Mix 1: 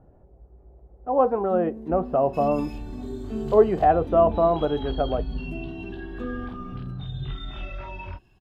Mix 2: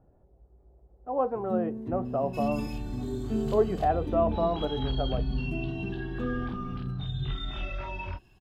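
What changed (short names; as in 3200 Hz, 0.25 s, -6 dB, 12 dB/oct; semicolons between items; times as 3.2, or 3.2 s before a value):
speech -7.5 dB; first sound: remove steep high-pass 210 Hz 48 dB/oct; second sound: add high shelf 3900 Hz +5 dB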